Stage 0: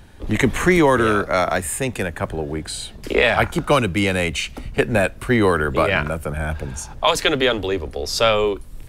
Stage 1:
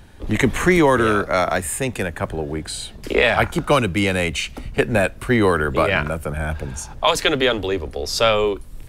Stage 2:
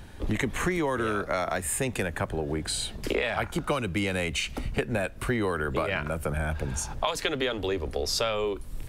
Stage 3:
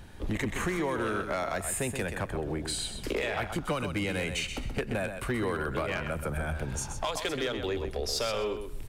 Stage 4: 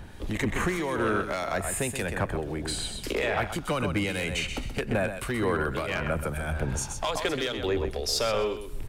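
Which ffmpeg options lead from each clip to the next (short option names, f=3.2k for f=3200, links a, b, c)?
-af anull
-af "acompressor=threshold=-25dB:ratio=6"
-af "asoftclip=type=tanh:threshold=-13.5dB,aecho=1:1:128|256|384:0.398|0.0796|0.0159,volume=20.5dB,asoftclip=hard,volume=-20.5dB,volume=-3dB"
-filter_complex "[0:a]acrossover=split=2400[a][b];[a]aeval=exprs='val(0)*(1-0.5/2+0.5/2*cos(2*PI*1.8*n/s))':c=same[c];[b]aeval=exprs='val(0)*(1-0.5/2-0.5/2*cos(2*PI*1.8*n/s))':c=same[d];[c][d]amix=inputs=2:normalize=0,volume=5.5dB"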